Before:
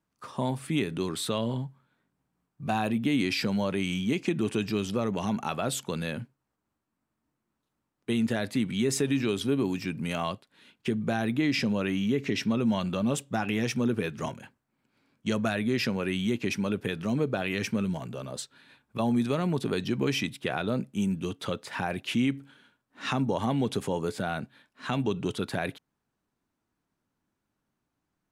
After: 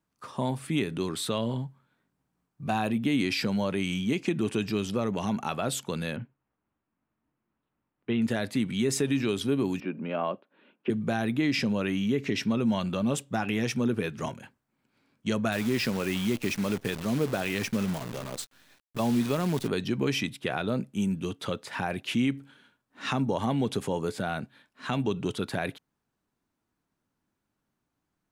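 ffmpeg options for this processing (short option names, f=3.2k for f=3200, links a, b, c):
-filter_complex "[0:a]asettb=1/sr,asplit=3[a][b][c];[a]atrim=end=6.164[d];[b]atrim=start=6.16:end=8.22,asetpts=PTS-STARTPTS,afade=t=in:d=0.004:c=qsin,afade=t=out:st=2.056:d=0.004:c=qsin,lowpass=f=3.1k:w=0.5412,lowpass=f=3.1k:w=1.3066[e];[c]atrim=start=8.216[f];[d][e]acrossfade=d=0.004:c1=hsin:c2=qsin[g];[g][f]acrossfade=d=0.004:c1=qsin:c2=hsin,asettb=1/sr,asplit=3[h][i][j];[h]atrim=end=9.804[k];[i]atrim=start=9.8:end=10.9,asetpts=PTS-STARTPTS,afade=t=in:d=0.004:c=qsin,afade=t=out:st=1.096:d=0.004:c=qsin,highpass=f=190:w=0.5412,highpass=f=190:w=1.3066,equalizer=f=360:t=q:w=4:g=4,equalizer=f=570:t=q:w=4:g=7,equalizer=f=2k:t=q:w=4:g=-8,lowpass=f=2.5k:w=0.5412,lowpass=f=2.5k:w=1.3066[l];[j]atrim=start=10.896[m];[k][l]acrossfade=d=0.004:c1=hsin:c2=qsin[n];[n][m]acrossfade=d=0.004:c1=qsin:c2=hsin,asettb=1/sr,asplit=3[o][p][q];[o]atrim=end=15.524[r];[p]atrim=start=15.52:end=19.68,asetpts=PTS-STARTPTS,afade=t=in:d=0.004:c=qsin,afade=t=out:st=4.156:d=0.004:c=qsin,acrusher=bits=7:dc=4:mix=0:aa=0.000001[s];[q]atrim=start=19.676[t];[r][s]acrossfade=d=0.004:c1=hsin:c2=qsin[u];[u][t]acrossfade=d=0.004:c1=qsin:c2=hsin"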